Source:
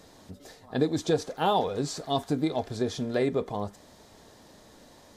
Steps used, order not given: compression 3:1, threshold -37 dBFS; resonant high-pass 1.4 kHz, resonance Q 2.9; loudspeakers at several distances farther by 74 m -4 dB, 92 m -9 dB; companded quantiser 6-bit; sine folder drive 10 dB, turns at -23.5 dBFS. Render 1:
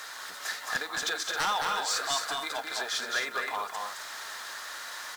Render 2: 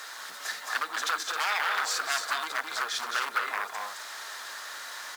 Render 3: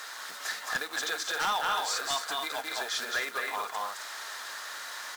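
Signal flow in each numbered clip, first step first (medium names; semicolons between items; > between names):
compression > resonant high-pass > companded quantiser > sine folder > loudspeakers at several distances; compression > loudspeakers at several distances > companded quantiser > sine folder > resonant high-pass; loudspeakers at several distances > compression > companded quantiser > resonant high-pass > sine folder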